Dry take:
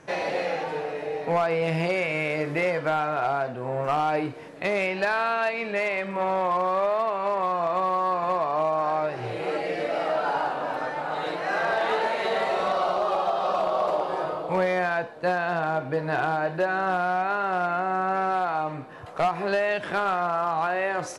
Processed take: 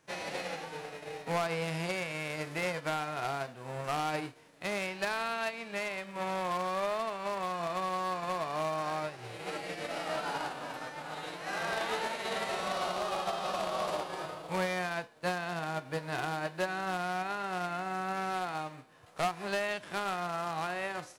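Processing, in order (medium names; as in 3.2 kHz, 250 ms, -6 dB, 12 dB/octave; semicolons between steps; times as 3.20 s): formants flattened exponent 0.6; upward expansion 1.5:1, over -40 dBFS; trim -7 dB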